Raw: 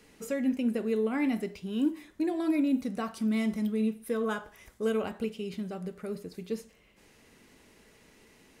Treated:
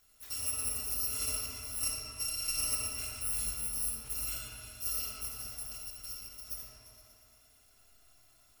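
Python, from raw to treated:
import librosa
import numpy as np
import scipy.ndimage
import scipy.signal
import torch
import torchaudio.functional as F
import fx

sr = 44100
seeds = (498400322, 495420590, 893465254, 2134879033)

y = fx.bit_reversed(x, sr, seeds[0], block=256)
y = fx.echo_opening(y, sr, ms=117, hz=750, octaves=2, feedback_pct=70, wet_db=-6)
y = fx.rev_freeverb(y, sr, rt60_s=2.3, hf_ratio=0.55, predelay_ms=15, drr_db=-2.0)
y = F.gain(torch.from_numpy(y), -8.5).numpy()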